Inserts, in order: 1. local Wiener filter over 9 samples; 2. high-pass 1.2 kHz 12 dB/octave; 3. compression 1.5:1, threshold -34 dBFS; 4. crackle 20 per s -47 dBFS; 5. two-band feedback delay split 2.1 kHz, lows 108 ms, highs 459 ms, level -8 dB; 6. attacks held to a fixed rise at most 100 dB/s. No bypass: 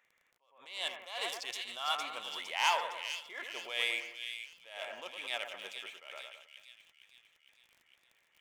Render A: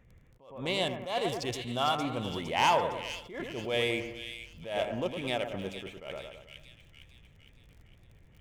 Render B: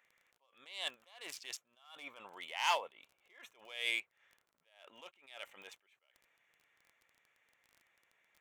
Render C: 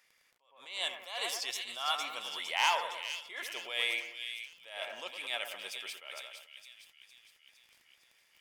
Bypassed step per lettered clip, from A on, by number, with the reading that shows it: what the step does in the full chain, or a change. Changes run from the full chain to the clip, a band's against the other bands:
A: 2, 250 Hz band +22.5 dB; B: 5, momentary loudness spread change +7 LU; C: 1, 8 kHz band +3.0 dB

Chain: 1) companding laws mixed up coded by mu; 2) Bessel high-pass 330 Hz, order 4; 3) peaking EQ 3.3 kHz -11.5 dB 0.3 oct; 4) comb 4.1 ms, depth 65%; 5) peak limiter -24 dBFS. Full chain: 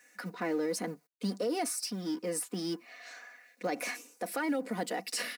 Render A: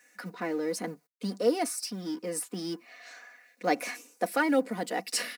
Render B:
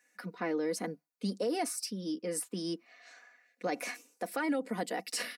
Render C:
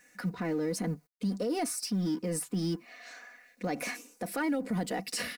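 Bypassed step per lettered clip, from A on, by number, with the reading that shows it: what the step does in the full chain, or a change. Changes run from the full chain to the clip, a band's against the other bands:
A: 5, crest factor change +8.0 dB; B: 1, distortion -22 dB; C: 2, 125 Hz band +9.0 dB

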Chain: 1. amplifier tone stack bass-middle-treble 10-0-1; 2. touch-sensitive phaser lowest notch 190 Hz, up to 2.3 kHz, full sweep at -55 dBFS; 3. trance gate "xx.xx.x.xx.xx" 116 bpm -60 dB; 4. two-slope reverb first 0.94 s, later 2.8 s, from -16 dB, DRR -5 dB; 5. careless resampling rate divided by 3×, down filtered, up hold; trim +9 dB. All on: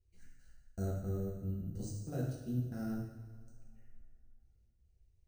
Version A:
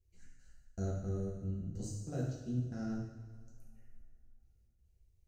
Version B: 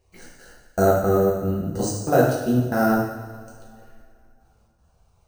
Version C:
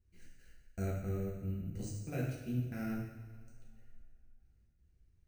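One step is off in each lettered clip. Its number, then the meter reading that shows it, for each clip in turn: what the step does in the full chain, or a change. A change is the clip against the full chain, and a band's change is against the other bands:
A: 5, 8 kHz band +2.0 dB; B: 1, 125 Hz band -12.0 dB; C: 2, 2 kHz band +7.0 dB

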